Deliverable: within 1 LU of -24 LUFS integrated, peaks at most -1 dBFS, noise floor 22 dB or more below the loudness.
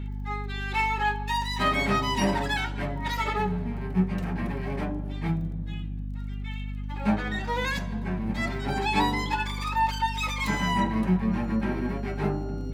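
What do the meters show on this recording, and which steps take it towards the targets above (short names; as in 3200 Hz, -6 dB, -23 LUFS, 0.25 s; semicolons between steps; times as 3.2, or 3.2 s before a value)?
ticks 17/s; hum 50 Hz; harmonics up to 250 Hz; hum level -30 dBFS; loudness -28.0 LUFS; peak -11.5 dBFS; loudness target -24.0 LUFS
-> de-click; de-hum 50 Hz, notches 5; gain +4 dB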